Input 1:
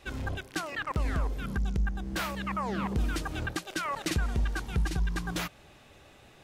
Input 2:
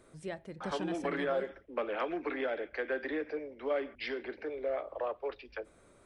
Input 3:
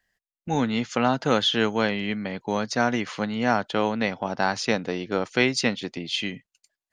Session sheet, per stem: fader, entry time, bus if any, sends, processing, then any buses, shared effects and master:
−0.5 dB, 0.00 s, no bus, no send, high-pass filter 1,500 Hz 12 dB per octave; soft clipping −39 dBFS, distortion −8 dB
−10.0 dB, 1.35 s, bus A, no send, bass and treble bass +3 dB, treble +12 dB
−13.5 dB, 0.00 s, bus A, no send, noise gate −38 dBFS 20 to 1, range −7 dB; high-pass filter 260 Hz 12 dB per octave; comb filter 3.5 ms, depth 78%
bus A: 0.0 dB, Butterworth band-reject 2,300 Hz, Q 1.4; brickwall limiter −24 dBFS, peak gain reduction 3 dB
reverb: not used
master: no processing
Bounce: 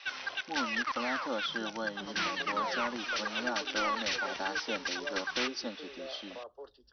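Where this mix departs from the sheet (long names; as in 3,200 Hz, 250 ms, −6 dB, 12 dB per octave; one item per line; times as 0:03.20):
stem 1 −0.5 dB → +11.0 dB
master: extra Chebyshev low-pass filter 6,000 Hz, order 10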